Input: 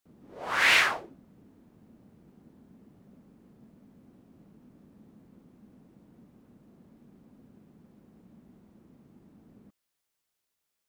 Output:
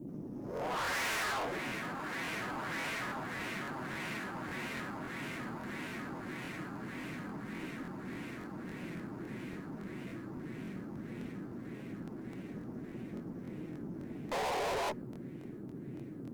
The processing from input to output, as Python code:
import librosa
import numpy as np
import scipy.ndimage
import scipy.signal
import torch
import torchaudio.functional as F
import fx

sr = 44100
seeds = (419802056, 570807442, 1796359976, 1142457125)

p1 = x + fx.echo_heads(x, sr, ms=397, heads='all three', feedback_pct=72, wet_db=-19, dry=0)
p2 = fx.spec_paint(p1, sr, seeds[0], shape='noise', start_s=9.54, length_s=0.4, low_hz=370.0, high_hz=1100.0, level_db=-22.0)
p3 = fx.peak_eq(p2, sr, hz=3700.0, db=-11.5, octaves=2.3)
p4 = fx.stretch_vocoder(p3, sr, factor=1.5)
p5 = fx.doubler(p4, sr, ms=16.0, db=-12.0)
p6 = fx.sample_hold(p5, sr, seeds[1], rate_hz=5800.0, jitter_pct=0)
p7 = p5 + (p6 * librosa.db_to_amplitude(-11.5))
p8 = fx.dmg_noise_band(p7, sr, seeds[2], low_hz=110.0, high_hz=350.0, level_db=-50.0)
p9 = fx.low_shelf(p8, sr, hz=98.0, db=-8.0)
p10 = fx.tube_stage(p9, sr, drive_db=42.0, bias=0.35)
p11 = fx.buffer_crackle(p10, sr, first_s=0.55, period_s=0.28, block=1024, kind='repeat')
p12 = fx.doppler_dist(p11, sr, depth_ms=0.15)
y = p12 * librosa.db_to_amplitude(8.5)